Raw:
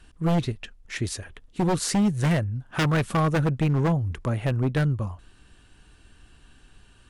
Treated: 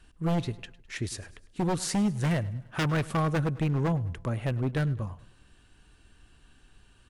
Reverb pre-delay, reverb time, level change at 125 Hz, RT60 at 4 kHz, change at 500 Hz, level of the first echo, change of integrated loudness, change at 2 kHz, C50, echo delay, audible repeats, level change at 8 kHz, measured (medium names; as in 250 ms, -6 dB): no reverb, no reverb, -4.5 dB, no reverb, -4.5 dB, -20.0 dB, -4.5 dB, -4.5 dB, no reverb, 103 ms, 3, -4.5 dB